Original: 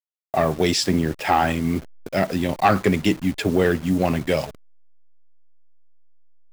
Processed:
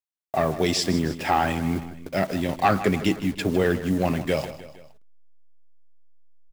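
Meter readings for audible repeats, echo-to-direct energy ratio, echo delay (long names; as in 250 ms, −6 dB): 3, −12.5 dB, 156 ms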